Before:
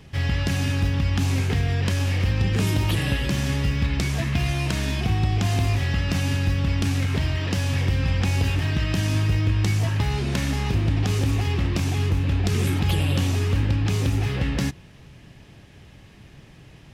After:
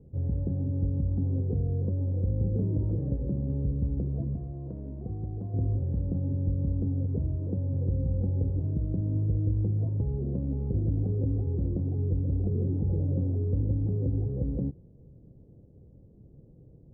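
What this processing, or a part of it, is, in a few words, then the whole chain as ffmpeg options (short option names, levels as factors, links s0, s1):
under water: -filter_complex "[0:a]lowpass=f=490:w=0.5412,lowpass=f=490:w=1.3066,equalizer=f=500:t=o:w=0.22:g=8,asettb=1/sr,asplit=3[s0][s1][s2];[s0]atrim=end=4.354[s3];[s1]atrim=start=4.35:end=5.54,asetpts=PTS-STARTPTS,afade=t=in:d=0.004:c=qsin,afade=t=out:st=1.186:d=0.004:c=qsin,lowshelf=f=410:g=-8[s4];[s2]atrim=start=5.536[s5];[s3][s4]acrossfade=d=0.004:c1=hsin:c2=qsin[s6];[s6][s5]acrossfade=d=0.004:c1=qsin:c2=hsin,volume=0.531"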